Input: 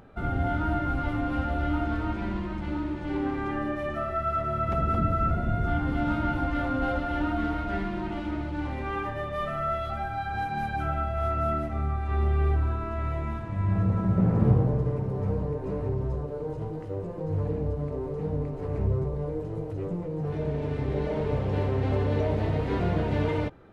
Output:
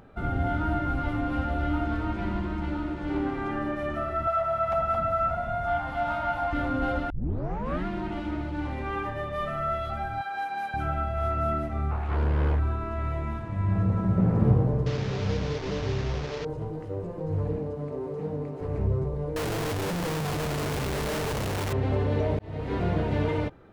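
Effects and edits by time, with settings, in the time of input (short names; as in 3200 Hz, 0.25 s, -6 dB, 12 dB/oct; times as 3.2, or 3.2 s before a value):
1.64–2.18 echo throw 0.54 s, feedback 75%, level -9 dB
4.27–6.53 resonant low shelf 520 Hz -9.5 dB, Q 3
7.1 tape start 0.76 s
10.21–10.74 HPF 500 Hz
11.91–12.59 Doppler distortion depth 0.89 ms
14.86–16.45 delta modulation 32 kbps, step -30 dBFS
17.58–18.61 HPF 150 Hz
19.36–21.73 infinite clipping
22.39–22.96 fade in equal-power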